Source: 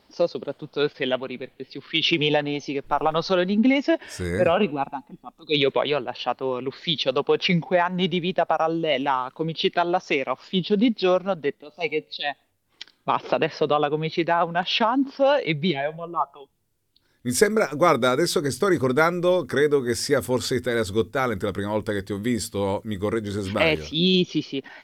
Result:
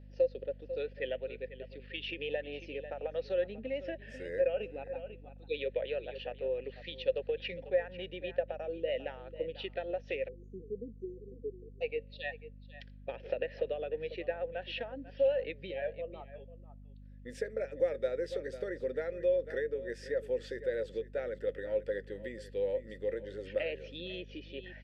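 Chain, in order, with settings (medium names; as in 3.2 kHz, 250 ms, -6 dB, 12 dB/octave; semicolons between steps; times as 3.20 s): delay 494 ms -17 dB; compression 4:1, threshold -23 dBFS, peak gain reduction 10.5 dB; vowel filter e; hum 50 Hz, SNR 15 dB; spectral selection erased 10.28–11.81 s, 500–6000 Hz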